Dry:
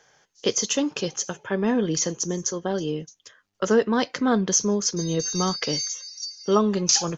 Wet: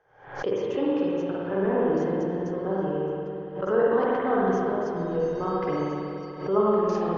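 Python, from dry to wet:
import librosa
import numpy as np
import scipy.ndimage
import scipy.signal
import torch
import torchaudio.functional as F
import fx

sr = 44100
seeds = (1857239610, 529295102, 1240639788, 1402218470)

y = scipy.signal.sosfilt(scipy.signal.butter(2, 1200.0, 'lowpass', fs=sr, output='sos'), x)
y = fx.peak_eq(y, sr, hz=220.0, db=-11.5, octaves=0.51)
y = fx.rev_spring(y, sr, rt60_s=2.9, pass_ms=(47, 57), chirp_ms=80, drr_db=-7.0)
y = fx.pre_swell(y, sr, db_per_s=100.0)
y = y * 10.0 ** (-4.5 / 20.0)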